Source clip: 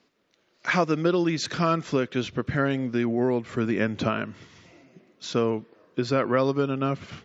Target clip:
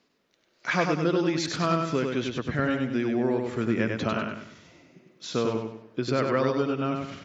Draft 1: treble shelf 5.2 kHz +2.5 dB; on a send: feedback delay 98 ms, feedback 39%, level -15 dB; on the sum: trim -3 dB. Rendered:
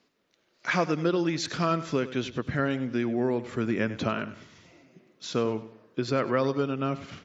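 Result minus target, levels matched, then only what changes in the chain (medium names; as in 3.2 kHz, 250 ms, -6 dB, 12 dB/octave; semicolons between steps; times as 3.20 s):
echo-to-direct -11 dB
change: feedback delay 98 ms, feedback 39%, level -4 dB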